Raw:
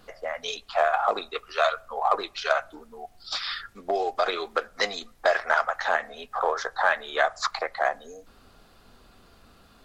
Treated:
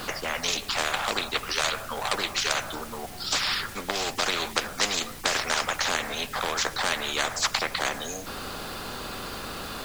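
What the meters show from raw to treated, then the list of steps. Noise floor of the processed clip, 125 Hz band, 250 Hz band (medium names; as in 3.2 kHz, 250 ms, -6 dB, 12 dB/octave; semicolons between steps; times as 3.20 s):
-40 dBFS, no reading, +6.5 dB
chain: band-stop 680 Hz, Q 12; word length cut 12-bit, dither triangular; spectrum-flattening compressor 4:1; trim +3 dB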